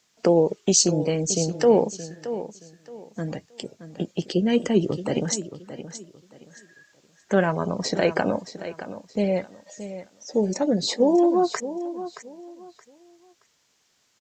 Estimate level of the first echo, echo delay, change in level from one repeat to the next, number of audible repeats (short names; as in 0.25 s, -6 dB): -12.5 dB, 0.623 s, -11.5 dB, 2